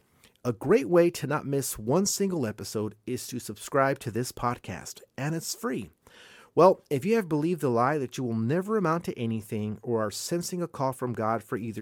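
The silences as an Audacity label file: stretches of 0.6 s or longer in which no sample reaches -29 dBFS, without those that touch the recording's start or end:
5.820000	6.570000	silence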